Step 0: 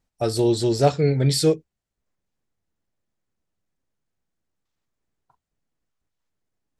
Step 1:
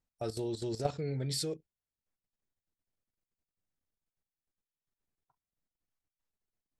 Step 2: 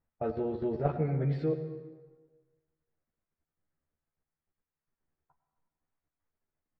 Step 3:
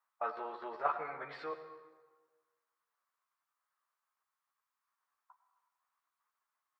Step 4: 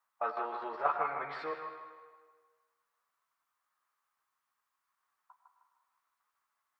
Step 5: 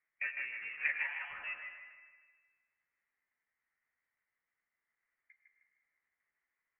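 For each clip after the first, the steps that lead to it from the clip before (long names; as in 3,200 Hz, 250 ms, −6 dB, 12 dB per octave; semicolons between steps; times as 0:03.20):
output level in coarse steps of 13 dB; level −8.5 dB
low-pass filter 2,000 Hz 24 dB per octave; double-tracking delay 13 ms −3 dB; dense smooth reverb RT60 1.4 s, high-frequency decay 0.7×, pre-delay 80 ms, DRR 9.5 dB; level +3.5 dB
high-pass with resonance 1,100 Hz, resonance Q 4.9; level +1.5 dB
delay with a band-pass on its return 155 ms, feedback 44%, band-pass 1,400 Hz, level −3 dB; level +2.5 dB
voice inversion scrambler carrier 3,100 Hz; level −4 dB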